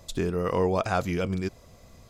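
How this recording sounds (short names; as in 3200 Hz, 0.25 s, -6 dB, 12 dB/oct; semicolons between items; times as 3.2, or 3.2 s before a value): noise floor -53 dBFS; spectral tilt -6.0 dB/oct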